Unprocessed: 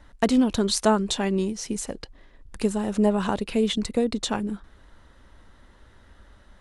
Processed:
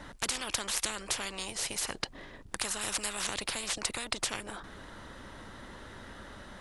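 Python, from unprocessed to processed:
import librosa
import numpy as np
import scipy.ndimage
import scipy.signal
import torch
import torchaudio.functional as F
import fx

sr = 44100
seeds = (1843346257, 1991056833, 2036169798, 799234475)

y = fx.high_shelf(x, sr, hz=4900.0, db=10.5, at=(2.81, 3.27))
y = fx.spectral_comp(y, sr, ratio=10.0)
y = F.gain(torch.from_numpy(y), -3.5).numpy()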